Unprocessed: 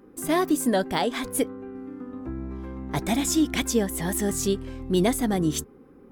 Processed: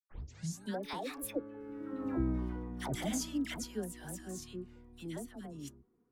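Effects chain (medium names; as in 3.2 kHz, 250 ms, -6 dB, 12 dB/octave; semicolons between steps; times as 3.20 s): tape start-up on the opening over 0.85 s; Doppler pass-by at 2.11 s, 30 m/s, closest 6.1 m; phase dispersion lows, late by 99 ms, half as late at 1 kHz; trim +1.5 dB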